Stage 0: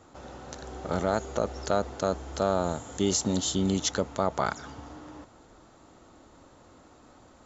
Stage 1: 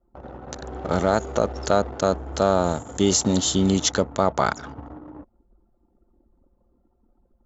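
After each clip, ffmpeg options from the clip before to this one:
ffmpeg -i in.wav -af "anlmdn=0.158,volume=6.5dB" out.wav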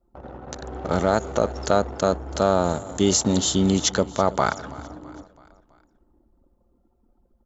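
ffmpeg -i in.wav -af "aecho=1:1:329|658|987|1316:0.106|0.0519|0.0254|0.0125" out.wav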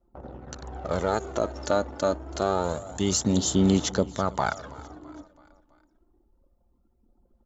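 ffmpeg -i in.wav -af "aphaser=in_gain=1:out_gain=1:delay=3.5:decay=0.43:speed=0.27:type=sinusoidal,volume=-5.5dB" out.wav

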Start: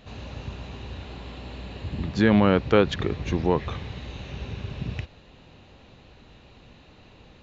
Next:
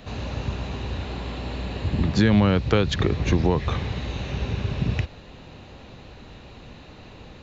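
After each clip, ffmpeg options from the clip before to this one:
ffmpeg -i in.wav -filter_complex "[0:a]equalizer=frequency=3000:width_type=o:width=0.64:gain=-2.5,acrossover=split=140|3000[link_01][link_02][link_03];[link_02]acompressor=threshold=-27dB:ratio=5[link_04];[link_01][link_04][link_03]amix=inputs=3:normalize=0,volume=7.5dB" out.wav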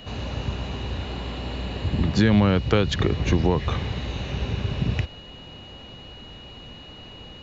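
ffmpeg -i in.wav -af "aeval=exprs='val(0)+0.00631*sin(2*PI*2900*n/s)':channel_layout=same" out.wav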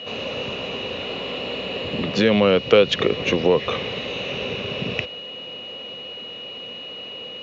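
ffmpeg -i in.wav -filter_complex "[0:a]asplit=2[link_01][link_02];[link_02]aeval=exprs='clip(val(0),-1,0.126)':channel_layout=same,volume=-10.5dB[link_03];[link_01][link_03]amix=inputs=2:normalize=0,highpass=280,equalizer=frequency=320:width_type=q:width=4:gain=-5,equalizer=frequency=500:width_type=q:width=4:gain=8,equalizer=frequency=860:width_type=q:width=4:gain=-7,equalizer=frequency=1600:width_type=q:width=4:gain=-6,equalizer=frequency=2700:width_type=q:width=4:gain=7,equalizer=frequency=4600:width_type=q:width=4:gain=-5,lowpass=frequency=5800:width=0.5412,lowpass=frequency=5800:width=1.3066,volume=3.5dB" out.wav

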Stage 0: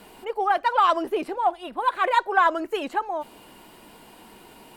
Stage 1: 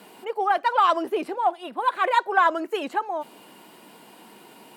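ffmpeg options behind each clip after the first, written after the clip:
ffmpeg -i in.wav -af "highpass=frequency=150:width=0.5412,highpass=frequency=150:width=1.3066" out.wav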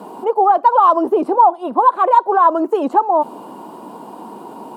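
ffmpeg -i in.wav -af "equalizer=frequency=460:width=0.34:gain=13,alimiter=limit=-9.5dB:level=0:latency=1:release=293,equalizer=frequency=125:width_type=o:width=1:gain=6,equalizer=frequency=250:width_type=o:width=1:gain=6,equalizer=frequency=1000:width_type=o:width=1:gain=12,equalizer=frequency=2000:width_type=o:width=1:gain=-11,equalizer=frequency=8000:width_type=o:width=1:gain=3,volume=-1.5dB" out.wav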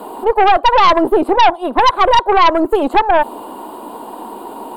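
ffmpeg -i in.wav -af "aexciter=amount=1.1:drive=3:freq=3100,equalizer=frequency=170:width_type=o:width=0.54:gain=-14,aeval=exprs='0.891*(cos(1*acos(clip(val(0)/0.891,-1,1)))-cos(1*PI/2))+0.178*(cos(5*acos(clip(val(0)/0.891,-1,1)))-cos(5*PI/2))+0.141*(cos(6*acos(clip(val(0)/0.891,-1,1)))-cos(6*PI/2))':channel_layout=same,volume=-1dB" out.wav

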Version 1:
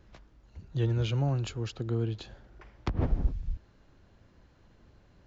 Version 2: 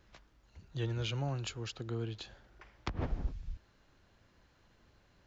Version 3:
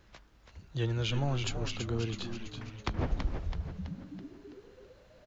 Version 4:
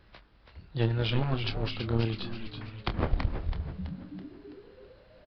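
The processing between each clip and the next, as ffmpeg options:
ffmpeg -i in.wav -af "tiltshelf=frequency=750:gain=-4.5,volume=-4dB" out.wav
ffmpeg -i in.wav -filter_complex "[0:a]asplit=8[link_01][link_02][link_03][link_04][link_05][link_06][link_07][link_08];[link_02]adelay=329,afreqshift=-110,volume=-6dB[link_09];[link_03]adelay=658,afreqshift=-220,volume=-11.5dB[link_10];[link_04]adelay=987,afreqshift=-330,volume=-17dB[link_11];[link_05]adelay=1316,afreqshift=-440,volume=-22.5dB[link_12];[link_06]adelay=1645,afreqshift=-550,volume=-28.1dB[link_13];[link_07]adelay=1974,afreqshift=-660,volume=-33.6dB[link_14];[link_08]adelay=2303,afreqshift=-770,volume=-39.1dB[link_15];[link_01][link_09][link_10][link_11][link_12][link_13][link_14][link_15]amix=inputs=8:normalize=0,volume=4dB" out.wav
ffmpeg -i in.wav -filter_complex "[0:a]aeval=exprs='0.15*(cos(1*acos(clip(val(0)/0.15,-1,1)))-cos(1*PI/2))+0.0596*(cos(6*acos(clip(val(0)/0.15,-1,1)))-cos(6*PI/2))+0.0376*(cos(8*acos(clip(val(0)/0.15,-1,1)))-cos(8*PI/2))':channel_layout=same,asplit=2[link_01][link_02];[link_02]adelay=27,volume=-10dB[link_03];[link_01][link_03]amix=inputs=2:normalize=0,aresample=11025,aresample=44100,volume=1.5dB" out.wav

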